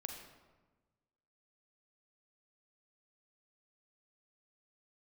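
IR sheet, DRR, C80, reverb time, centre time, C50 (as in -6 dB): 3.0 dB, 6.5 dB, 1.3 s, 38 ms, 4.5 dB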